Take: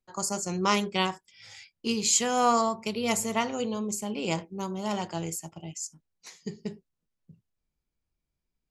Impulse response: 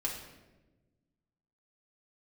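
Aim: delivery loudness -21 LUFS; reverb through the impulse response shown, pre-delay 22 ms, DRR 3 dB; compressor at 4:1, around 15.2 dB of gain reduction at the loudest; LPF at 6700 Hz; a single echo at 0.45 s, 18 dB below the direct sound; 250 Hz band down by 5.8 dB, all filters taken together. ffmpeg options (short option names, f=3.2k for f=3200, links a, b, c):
-filter_complex "[0:a]lowpass=6.7k,equalizer=f=250:t=o:g=-7.5,acompressor=threshold=-38dB:ratio=4,aecho=1:1:450:0.126,asplit=2[a][b];[1:a]atrim=start_sample=2205,adelay=22[c];[b][c]afir=irnorm=-1:irlink=0,volume=-6dB[d];[a][d]amix=inputs=2:normalize=0,volume=18.5dB"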